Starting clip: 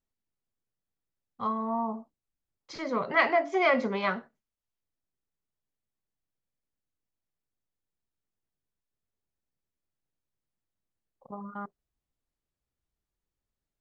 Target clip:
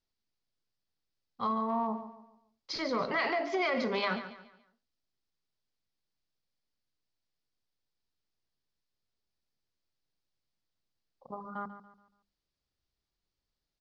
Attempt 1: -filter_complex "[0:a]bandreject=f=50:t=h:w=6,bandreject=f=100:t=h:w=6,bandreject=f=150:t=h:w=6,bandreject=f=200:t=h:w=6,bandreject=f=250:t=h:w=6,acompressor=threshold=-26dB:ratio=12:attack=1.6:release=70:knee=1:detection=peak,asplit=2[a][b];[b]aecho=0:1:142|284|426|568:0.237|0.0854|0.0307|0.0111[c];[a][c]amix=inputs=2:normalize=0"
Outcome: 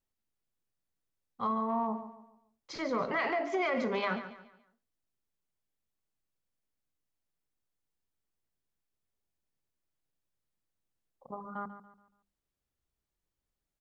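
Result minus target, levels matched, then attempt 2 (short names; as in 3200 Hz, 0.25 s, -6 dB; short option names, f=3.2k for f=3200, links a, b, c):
4000 Hz band -5.5 dB
-filter_complex "[0:a]bandreject=f=50:t=h:w=6,bandreject=f=100:t=h:w=6,bandreject=f=150:t=h:w=6,bandreject=f=200:t=h:w=6,bandreject=f=250:t=h:w=6,acompressor=threshold=-26dB:ratio=12:attack=1.6:release=70:knee=1:detection=peak,lowpass=f=4.8k:t=q:w=3,asplit=2[a][b];[b]aecho=0:1:142|284|426|568:0.237|0.0854|0.0307|0.0111[c];[a][c]amix=inputs=2:normalize=0"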